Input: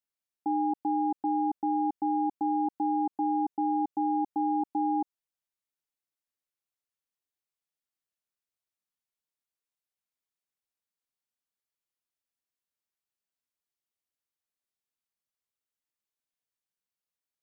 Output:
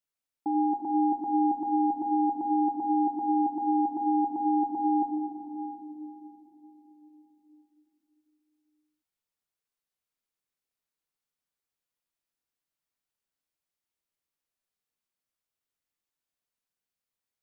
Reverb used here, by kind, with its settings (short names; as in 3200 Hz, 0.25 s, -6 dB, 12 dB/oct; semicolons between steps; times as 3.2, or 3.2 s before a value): shoebox room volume 180 m³, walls hard, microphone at 0.38 m